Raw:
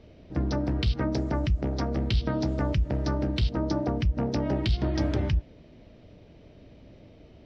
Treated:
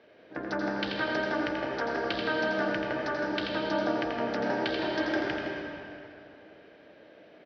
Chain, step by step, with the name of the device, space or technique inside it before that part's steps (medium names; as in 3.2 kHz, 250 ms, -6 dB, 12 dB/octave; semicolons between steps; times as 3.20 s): station announcement (band-pass 440–3700 Hz; peaking EQ 1.6 kHz +12 dB 0.29 oct; loudspeakers at several distances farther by 29 m -6 dB, 56 m -11 dB; reverberation RT60 2.7 s, pre-delay 93 ms, DRR 0.5 dB)